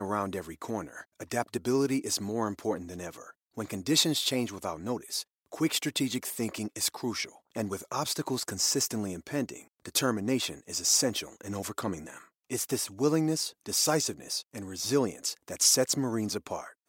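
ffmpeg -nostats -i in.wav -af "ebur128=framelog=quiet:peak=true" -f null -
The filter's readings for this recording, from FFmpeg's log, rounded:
Integrated loudness:
  I:         -29.8 LUFS
  Threshold: -40.2 LUFS
Loudness range:
  LRA:         4.3 LU
  Threshold: -50.3 LUFS
  LRA low:   -32.3 LUFS
  LRA high:  -28.0 LUFS
True peak:
  Peak:      -10.5 dBFS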